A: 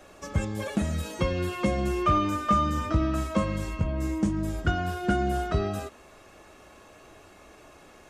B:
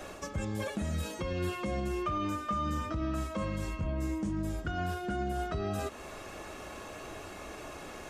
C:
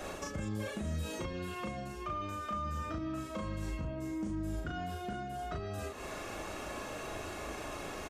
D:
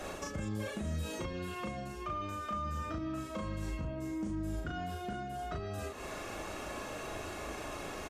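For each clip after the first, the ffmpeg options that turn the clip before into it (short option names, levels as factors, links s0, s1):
-af "areverse,acompressor=threshold=0.0178:ratio=4,areverse,alimiter=level_in=2.66:limit=0.0631:level=0:latency=1:release=177,volume=0.376,volume=2.37"
-filter_complex "[0:a]acompressor=threshold=0.0126:ratio=6,asplit=2[s0][s1];[s1]adelay=38,volume=0.75[s2];[s0][s2]amix=inputs=2:normalize=0,volume=1.12"
-ar 48000 -c:a libmp3lame -b:a 320k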